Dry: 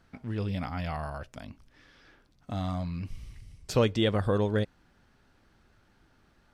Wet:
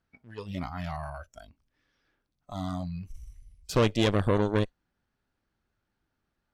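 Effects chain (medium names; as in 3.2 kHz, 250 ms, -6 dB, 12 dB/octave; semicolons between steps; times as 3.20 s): Chebyshev shaper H 6 -15 dB, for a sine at -11.5 dBFS; spectral noise reduction 16 dB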